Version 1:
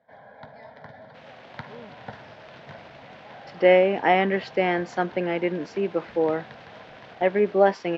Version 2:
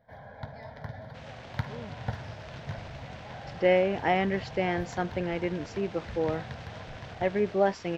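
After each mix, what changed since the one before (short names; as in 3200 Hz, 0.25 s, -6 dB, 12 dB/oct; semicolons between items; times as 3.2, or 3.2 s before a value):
speech -6.5 dB; master: remove three-band isolator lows -20 dB, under 180 Hz, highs -16 dB, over 5000 Hz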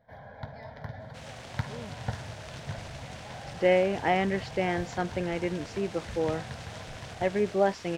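second sound: remove air absorption 150 m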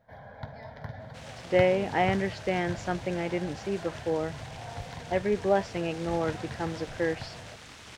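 speech: entry -2.10 s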